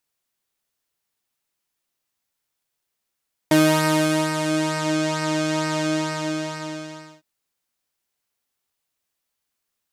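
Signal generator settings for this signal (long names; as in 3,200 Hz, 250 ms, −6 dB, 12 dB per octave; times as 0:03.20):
subtractive patch with pulse-width modulation D#4, sub −9 dB, filter lowpass, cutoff 6,600 Hz, Q 1.4, filter envelope 1 octave, filter decay 1.48 s, filter sustain 15%, attack 4.1 ms, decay 0.81 s, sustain −7 dB, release 1.42 s, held 2.29 s, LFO 2.2 Hz, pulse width 21%, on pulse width 12%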